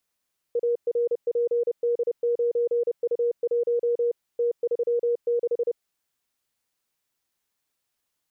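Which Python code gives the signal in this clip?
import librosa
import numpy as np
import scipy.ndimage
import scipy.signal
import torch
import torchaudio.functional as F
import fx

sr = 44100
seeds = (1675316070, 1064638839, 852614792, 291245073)

y = fx.morse(sr, text='ARPD9U1 T36', wpm=30, hz=475.0, level_db=-20.0)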